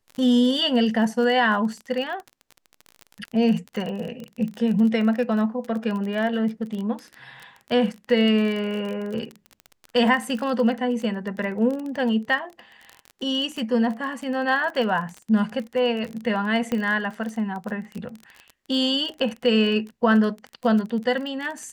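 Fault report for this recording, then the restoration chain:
crackle 30/s -29 dBFS
16.72 pop -13 dBFS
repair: de-click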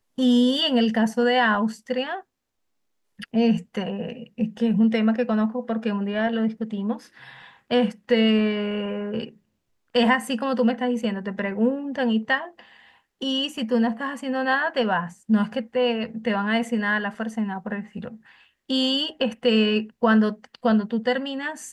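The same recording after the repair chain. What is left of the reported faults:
none

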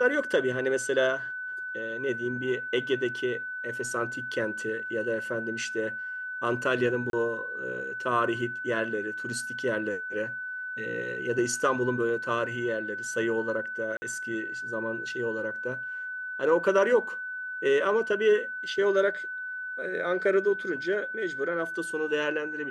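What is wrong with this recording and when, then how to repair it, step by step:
tone 1500 Hz -33 dBFS
7.1–7.13 gap 32 ms
13.97–14.02 gap 50 ms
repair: notch 1500 Hz, Q 30; interpolate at 7.1, 32 ms; interpolate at 13.97, 50 ms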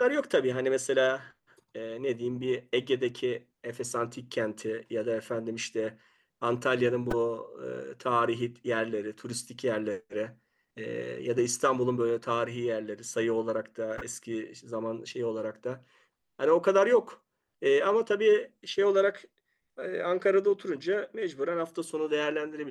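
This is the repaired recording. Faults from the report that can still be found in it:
none

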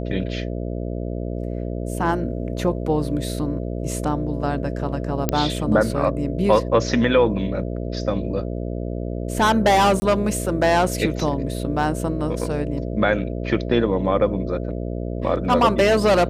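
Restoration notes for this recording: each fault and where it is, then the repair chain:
buzz 60 Hz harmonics 11 -27 dBFS
5.29 pop -4 dBFS
10–10.02 gap 20 ms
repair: de-click; de-hum 60 Hz, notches 11; interpolate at 10, 20 ms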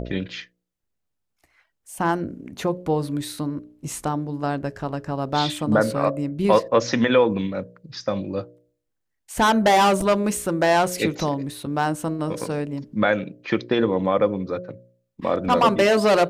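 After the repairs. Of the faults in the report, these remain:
none

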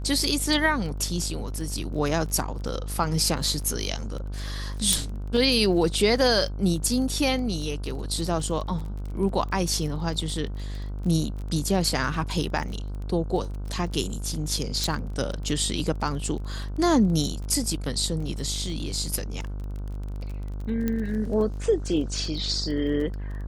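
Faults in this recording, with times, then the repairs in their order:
buzz 50 Hz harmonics 31 -32 dBFS
crackle 23/s -33 dBFS
4.93 pop -6 dBFS
14.84 pop
20.88 pop -14 dBFS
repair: de-click; de-hum 50 Hz, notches 31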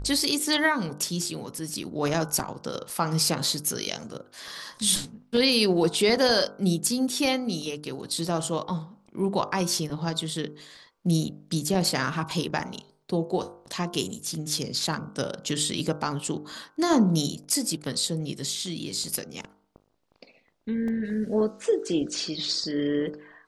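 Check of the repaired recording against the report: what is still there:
20.88 pop

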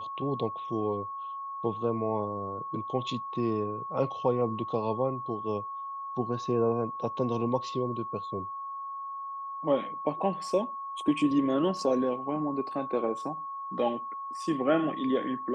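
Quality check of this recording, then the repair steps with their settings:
tone 1100 Hz -35 dBFS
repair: notch 1100 Hz, Q 30

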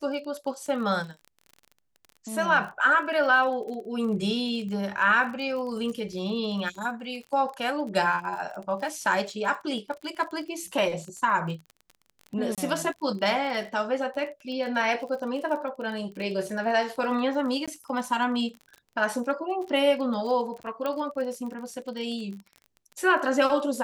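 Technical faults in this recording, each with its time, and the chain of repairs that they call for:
crackle 33/s -35 dBFS
12.55–12.58 gap 27 ms
17.66–17.68 gap 16 ms
20.86 pop -17 dBFS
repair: de-click; interpolate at 12.55, 27 ms; interpolate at 17.66, 16 ms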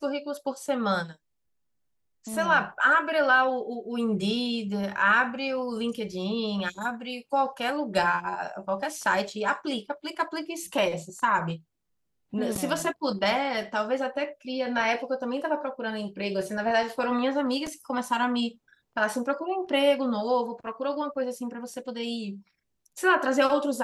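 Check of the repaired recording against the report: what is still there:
none

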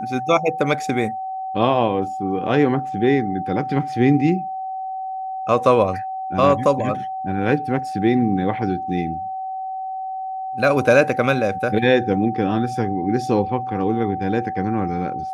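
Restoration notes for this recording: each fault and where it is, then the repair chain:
tone 760 Hz -25 dBFS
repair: notch 760 Hz, Q 30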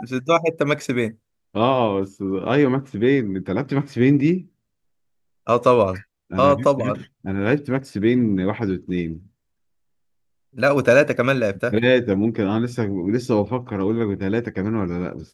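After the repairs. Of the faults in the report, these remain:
none

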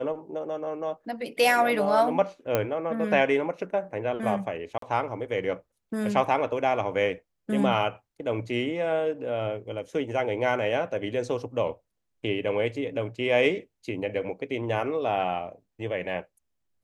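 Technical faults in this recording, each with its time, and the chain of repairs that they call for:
2.55 pop -10 dBFS
4.78–4.82 gap 43 ms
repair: de-click; interpolate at 4.78, 43 ms

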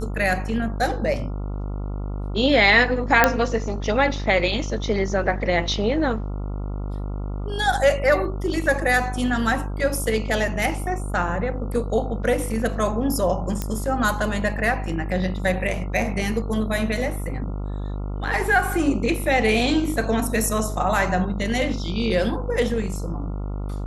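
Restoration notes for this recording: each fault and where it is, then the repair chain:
buzz 50 Hz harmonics 28 -28 dBFS
3.24 pop 0 dBFS
13.62 pop -11 dBFS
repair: de-click; de-hum 50 Hz, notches 28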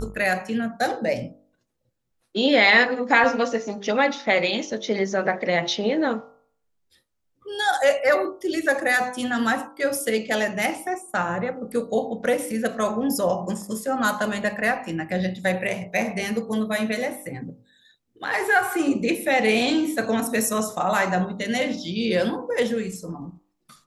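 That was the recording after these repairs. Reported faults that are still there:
none

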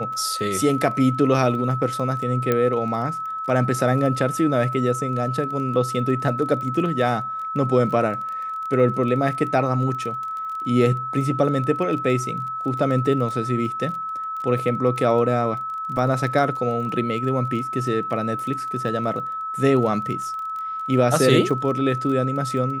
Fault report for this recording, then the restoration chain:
crackle 21/s -30 dBFS
tone 1300 Hz -26 dBFS
2.52 pop -8 dBFS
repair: de-click; notch 1300 Hz, Q 30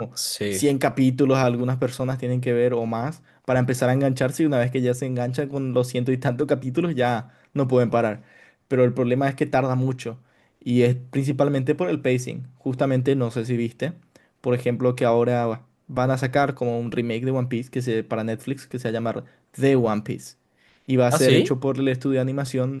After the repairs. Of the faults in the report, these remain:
none

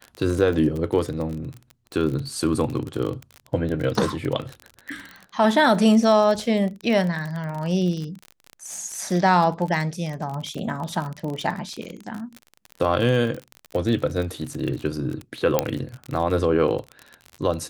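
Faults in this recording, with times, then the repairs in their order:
crackle 35/s -27 dBFS
15.59 pop -4 dBFS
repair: de-click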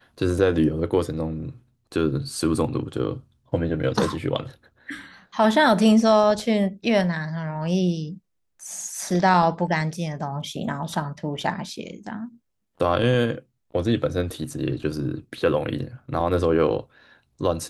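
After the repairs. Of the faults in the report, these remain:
none

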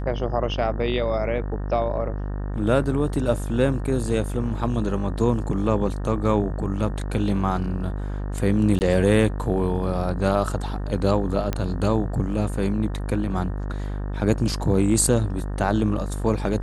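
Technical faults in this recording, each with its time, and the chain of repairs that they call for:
buzz 50 Hz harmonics 37 -28 dBFS
8.79–8.81 gap 19 ms
11.53 pop -11 dBFS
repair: de-click; de-hum 50 Hz, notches 37; interpolate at 8.79, 19 ms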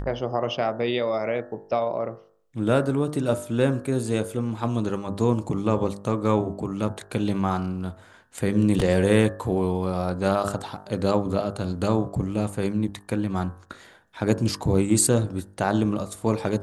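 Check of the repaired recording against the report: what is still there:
none

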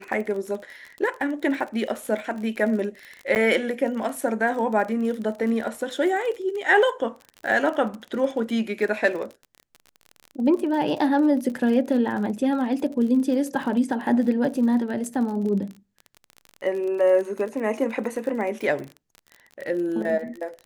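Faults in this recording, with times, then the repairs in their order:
crackle 38/s -31 dBFS
3.35–3.36 gap 9.5 ms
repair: de-click; interpolate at 3.35, 9.5 ms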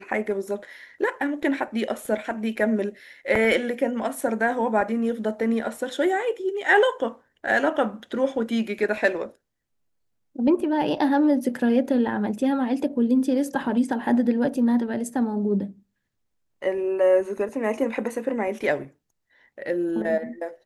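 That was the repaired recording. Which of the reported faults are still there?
none

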